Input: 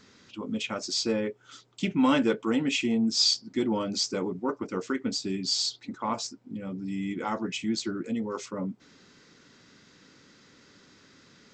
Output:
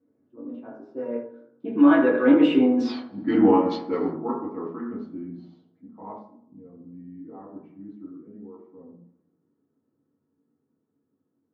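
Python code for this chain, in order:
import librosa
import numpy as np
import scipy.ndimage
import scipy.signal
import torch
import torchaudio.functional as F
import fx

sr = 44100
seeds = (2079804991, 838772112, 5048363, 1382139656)

p1 = fx.doppler_pass(x, sr, speed_mps=35, closest_m=3.0, pass_at_s=2.9)
p2 = fx.high_shelf(p1, sr, hz=2500.0, db=6.5)
p3 = fx.echo_feedback(p2, sr, ms=80, feedback_pct=44, wet_db=-15.0)
p4 = fx.over_compress(p3, sr, threshold_db=-40.0, ratio=-0.5)
p5 = p3 + (p4 * 10.0 ** (2.0 / 20.0))
p6 = fx.rev_fdn(p5, sr, rt60_s=0.78, lf_ratio=1.0, hf_ratio=0.4, size_ms=63.0, drr_db=-4.5)
p7 = fx.env_lowpass_down(p6, sr, base_hz=2000.0, full_db=-22.5)
p8 = scipy.signal.sosfilt(scipy.signal.butter(2, 210.0, 'highpass', fs=sr, output='sos'), p7)
p9 = fx.peak_eq(p8, sr, hz=6300.0, db=-14.5, octaves=2.0)
p10 = fx.env_lowpass(p9, sr, base_hz=410.0, full_db=-24.0)
y = p10 * 10.0 ** (8.5 / 20.0)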